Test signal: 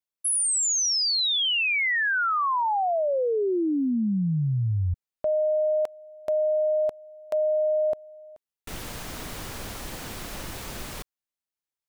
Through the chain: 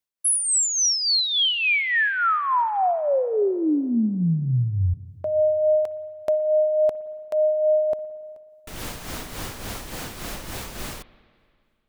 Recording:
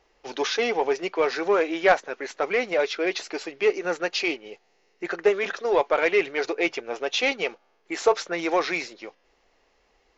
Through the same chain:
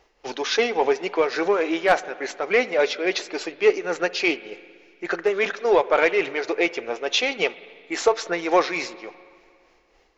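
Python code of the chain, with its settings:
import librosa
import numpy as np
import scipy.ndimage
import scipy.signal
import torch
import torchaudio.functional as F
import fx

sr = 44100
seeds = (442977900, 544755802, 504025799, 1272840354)

y = np.clip(x, -10.0 ** (-9.5 / 20.0), 10.0 ** (-9.5 / 20.0))
y = y * (1.0 - 0.56 / 2.0 + 0.56 / 2.0 * np.cos(2.0 * np.pi * 3.5 * (np.arange(len(y)) / sr)))
y = fx.rev_spring(y, sr, rt60_s=2.2, pass_ms=(55, 59), chirp_ms=35, drr_db=17.0)
y = F.gain(torch.from_numpy(y), 5.0).numpy()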